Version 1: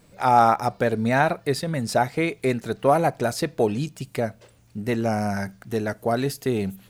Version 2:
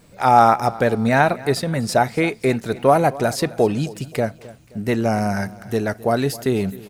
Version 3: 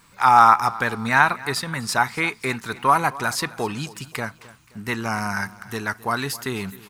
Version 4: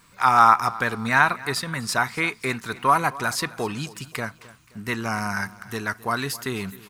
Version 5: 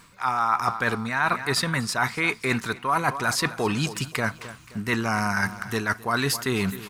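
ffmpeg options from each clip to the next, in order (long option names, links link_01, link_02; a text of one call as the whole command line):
ffmpeg -i in.wav -af "aecho=1:1:263|526|789:0.106|0.0477|0.0214,volume=4dB" out.wav
ffmpeg -i in.wav -af "lowshelf=frequency=800:width_type=q:width=3:gain=-8.5,volume=1dB" out.wav
ffmpeg -i in.wav -af "bandreject=frequency=850:width=12,volume=-1dB" out.wav
ffmpeg -i in.wav -af "highshelf=frequency=12000:gain=-6,areverse,acompressor=threshold=-29dB:ratio=6,areverse,volume=8dB" out.wav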